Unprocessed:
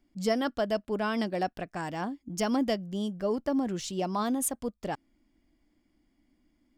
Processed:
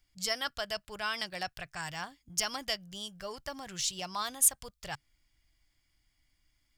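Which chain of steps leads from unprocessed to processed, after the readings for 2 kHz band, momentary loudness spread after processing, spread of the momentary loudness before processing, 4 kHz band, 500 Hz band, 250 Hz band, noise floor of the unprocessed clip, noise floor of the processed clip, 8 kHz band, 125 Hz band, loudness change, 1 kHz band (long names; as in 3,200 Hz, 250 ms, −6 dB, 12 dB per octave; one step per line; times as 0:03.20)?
+1.0 dB, 16 LU, 7 LU, +5.5 dB, −11.5 dB, −18.5 dB, −74 dBFS, −76 dBFS, +7.0 dB, −10.5 dB, −2.5 dB, −5.5 dB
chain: drawn EQ curve 140 Hz 0 dB, 230 Hz −23 dB, 1,400 Hz 0 dB, 4,700 Hz +7 dB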